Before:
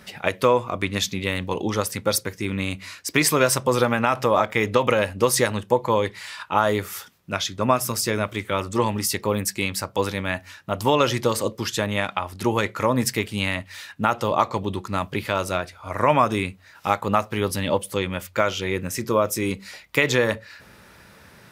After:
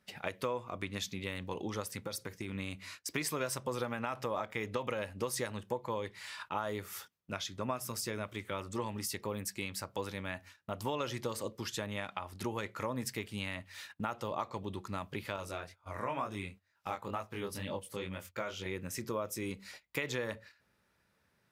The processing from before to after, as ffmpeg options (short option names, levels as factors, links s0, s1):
-filter_complex "[0:a]asettb=1/sr,asplit=3[s0][s1][s2];[s0]atrim=end=1.984[s3];[s1]atrim=start=1.98:end=2.55,asetpts=PTS-STARTPTS,afade=t=in:d=0.004:c=qsin,afade=t=out:st=0.566:d=0.004:c=qsin,acompressor=threshold=0.0708:ratio=6:attack=3.2:release=140:knee=1:detection=peak[s4];[s2]atrim=start=2.546[s5];[s3][s4]acrossfade=d=0.004:c1=hsin:c2=qsin[s6];[s6][s5]acrossfade=d=0.004:c1=qsin:c2=hsin,asettb=1/sr,asplit=3[s7][s8][s9];[s7]atrim=end=15.364[s10];[s8]atrim=start=15.36:end=18.66,asetpts=PTS-STARTPTS,afade=t=in:d=0.004:c=qsin,afade=t=out:st=3.296:d=0.004:c=qsin,flanger=delay=19.5:depth=5.3:speed=2.1[s11];[s9]atrim=start=18.656[s12];[s10][s11]acrossfade=d=0.004:c1=hsin:c2=qsin[s13];[s13][s12]acrossfade=d=0.004:c1=qsin:c2=hsin,agate=range=0.141:threshold=0.0112:ratio=16:detection=peak,acompressor=threshold=0.0316:ratio=2,volume=0.376"